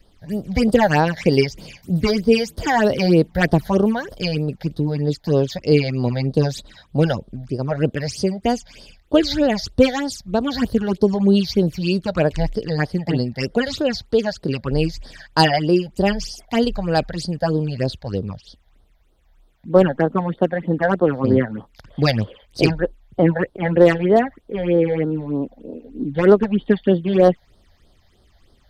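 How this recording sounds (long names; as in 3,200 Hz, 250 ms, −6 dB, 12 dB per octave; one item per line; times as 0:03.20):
phaser sweep stages 8, 3.2 Hz, lowest notch 330–2,400 Hz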